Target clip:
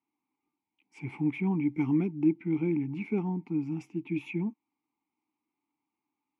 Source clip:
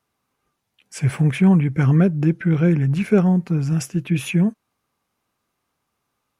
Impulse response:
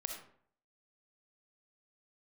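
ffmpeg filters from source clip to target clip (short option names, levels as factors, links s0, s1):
-filter_complex "[0:a]asplit=3[s0][s1][s2];[s0]bandpass=f=300:t=q:w=8,volume=1[s3];[s1]bandpass=f=870:t=q:w=8,volume=0.501[s4];[s2]bandpass=f=2240:t=q:w=8,volume=0.355[s5];[s3][s4][s5]amix=inputs=3:normalize=0,asettb=1/sr,asplit=3[s6][s7][s8];[s6]atrim=end=1.694[s9];[s7]atrim=start=1.69:end=2.13,asetpts=PTS-STARTPTS,afade=t=in:d=0.004:c=qsin,afade=t=out:st=0.436:d=0.004:c=qsin,highshelf=f=4900:g=11[s10];[s8]atrim=start=2.126[s11];[s9][s10]acrossfade=d=0.004:c1=hsin:c2=qsin[s12];[s12][s11]acrossfade=d=0.004:c1=qsin:c2=hsin,volume=1.19"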